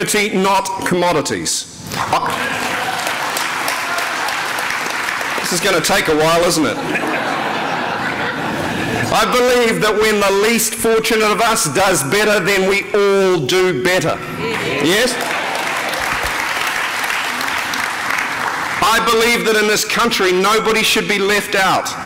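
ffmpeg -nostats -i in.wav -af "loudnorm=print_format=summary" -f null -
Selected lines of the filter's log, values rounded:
Input Integrated:    -15.0 LUFS
Input True Peak:      -3.7 dBTP
Input LRA:             3.9 LU
Input Threshold:     -25.0 LUFS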